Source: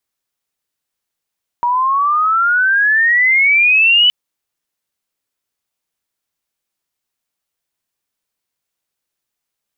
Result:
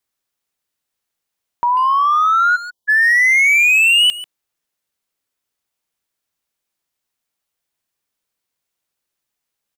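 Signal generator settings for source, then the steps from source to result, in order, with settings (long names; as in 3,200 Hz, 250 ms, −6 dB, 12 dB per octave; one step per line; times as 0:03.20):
glide logarithmic 950 Hz → 3,000 Hz −12 dBFS → −7 dBFS 2.47 s
time-frequency box erased 0:02.56–0:02.89, 1,100–2,900 Hz
hard clipping −10 dBFS
far-end echo of a speakerphone 140 ms, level −9 dB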